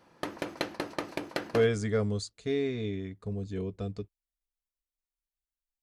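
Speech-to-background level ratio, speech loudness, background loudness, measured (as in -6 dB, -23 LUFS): 5.0 dB, -32.0 LUFS, -37.0 LUFS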